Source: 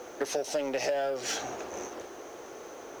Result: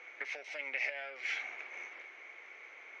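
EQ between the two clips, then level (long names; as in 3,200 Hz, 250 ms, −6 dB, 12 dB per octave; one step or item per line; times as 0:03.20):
resonant band-pass 2,200 Hz, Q 15
high-frequency loss of the air 88 metres
+16.0 dB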